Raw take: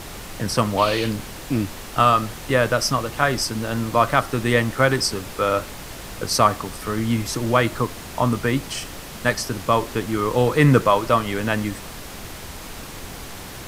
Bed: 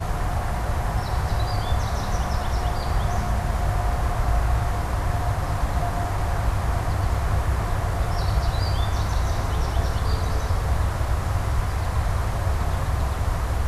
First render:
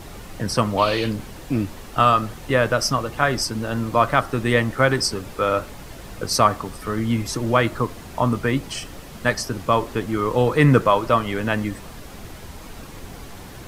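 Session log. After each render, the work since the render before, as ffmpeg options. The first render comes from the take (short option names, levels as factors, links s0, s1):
-af "afftdn=nr=7:nf=-36"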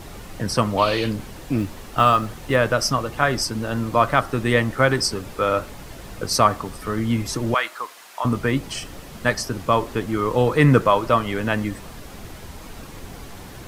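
-filter_complex "[0:a]asettb=1/sr,asplit=3[s0][s1][s2];[s0]atrim=end=1.584[s3];[s1]atrim=start=1.58:end=2.56,asetpts=PTS-STARTPTS,afade=t=in:d=0.004:c=qsin,afade=t=out:st=0.976:d=0.004:c=qsin,acrusher=bits=8:mode=log:mix=0:aa=0.000001[s4];[s2]atrim=start=2.556[s5];[s3][s4]acrossfade=d=0.004:c1=hsin:c2=qsin[s6];[s6][s5]acrossfade=d=0.004:c1=qsin:c2=hsin,asettb=1/sr,asplit=3[s7][s8][s9];[s7]atrim=end=7.544[s10];[s8]atrim=start=7.54:end=8.25,asetpts=PTS-STARTPTS,afade=t=in:d=0.004:c=qsin,afade=t=out:st=0.706:d=0.004:c=qsin,highpass=980[s11];[s9]atrim=start=8.246[s12];[s10][s11]acrossfade=d=0.004:c1=hsin:c2=qsin[s13];[s13][s12]acrossfade=d=0.004:c1=qsin:c2=hsin"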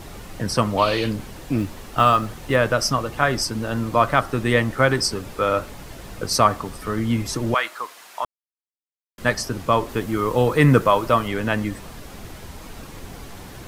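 -filter_complex "[0:a]asettb=1/sr,asplit=3[s0][s1][s2];[s0]atrim=end=9.894[s3];[s1]atrim=start=9.89:end=11.28,asetpts=PTS-STARTPTS,afade=t=in:d=0.004:c=qsin,afade=t=out:st=1.386:d=0.004:c=qsin,highshelf=f=12000:g=9[s4];[s2]atrim=start=11.276[s5];[s3][s4]acrossfade=d=0.004:c1=hsin:c2=qsin[s6];[s6][s5]acrossfade=d=0.004:c1=qsin:c2=hsin,asplit=3[s7][s8][s9];[s7]atrim=end=8.25,asetpts=PTS-STARTPTS,afade=t=out:st=8.246:d=0.004:c=hsin[s10];[s8]atrim=start=8.25:end=9.18,asetpts=PTS-STARTPTS,volume=0[s11];[s9]atrim=start=9.18,asetpts=PTS-STARTPTS,afade=t=in:d=0.004:c=hsin[s12];[s10][s11][s12]concat=n=3:v=0:a=1"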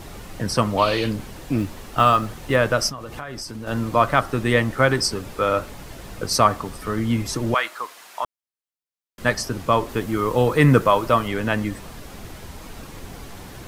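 -filter_complex "[0:a]asplit=3[s0][s1][s2];[s0]afade=t=out:st=2.89:d=0.02[s3];[s1]acompressor=threshold=0.0316:ratio=5:attack=3.2:release=140:knee=1:detection=peak,afade=t=in:st=2.89:d=0.02,afade=t=out:st=3.66:d=0.02[s4];[s2]afade=t=in:st=3.66:d=0.02[s5];[s3][s4][s5]amix=inputs=3:normalize=0"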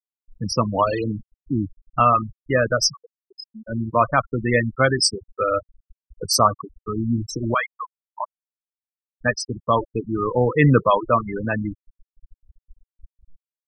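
-af "aemphasis=mode=production:type=cd,afftfilt=real='re*gte(hypot(re,im),0.2)':imag='im*gte(hypot(re,im),0.2)':win_size=1024:overlap=0.75"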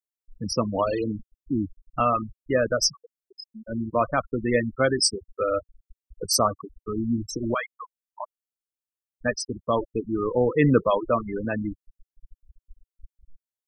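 -af "equalizer=f=125:t=o:w=1:g=-8,equalizer=f=1000:t=o:w=1:g=-7,equalizer=f=2000:t=o:w=1:g=-5,equalizer=f=4000:t=o:w=1:g=-4"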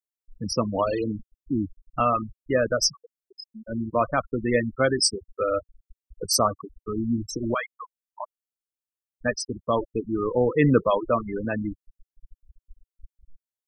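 -af anull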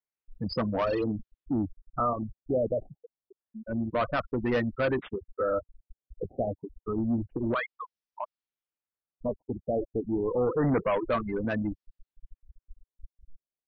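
-af "asoftclip=type=tanh:threshold=0.0891,afftfilt=real='re*lt(b*sr/1024,780*pow(6200/780,0.5+0.5*sin(2*PI*0.28*pts/sr)))':imag='im*lt(b*sr/1024,780*pow(6200/780,0.5+0.5*sin(2*PI*0.28*pts/sr)))':win_size=1024:overlap=0.75"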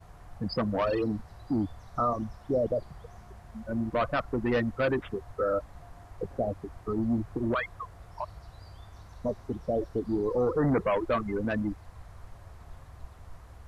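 -filter_complex "[1:a]volume=0.0562[s0];[0:a][s0]amix=inputs=2:normalize=0"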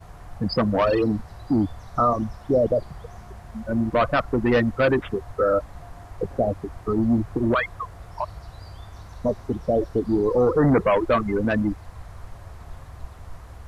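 -af "volume=2.37"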